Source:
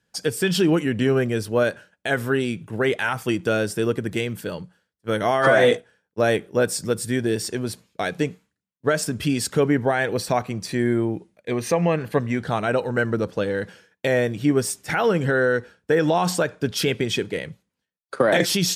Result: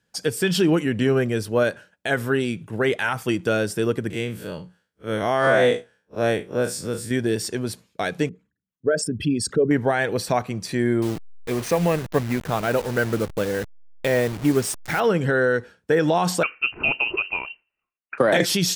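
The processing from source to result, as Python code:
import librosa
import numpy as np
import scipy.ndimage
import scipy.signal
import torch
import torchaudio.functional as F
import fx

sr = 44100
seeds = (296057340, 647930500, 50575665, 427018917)

y = fx.spec_blur(x, sr, span_ms=85.0, at=(4.1, 7.11))
y = fx.envelope_sharpen(y, sr, power=2.0, at=(8.29, 9.71))
y = fx.delta_hold(y, sr, step_db=-29.0, at=(11.02, 15.0))
y = fx.freq_invert(y, sr, carrier_hz=2900, at=(16.43, 18.18))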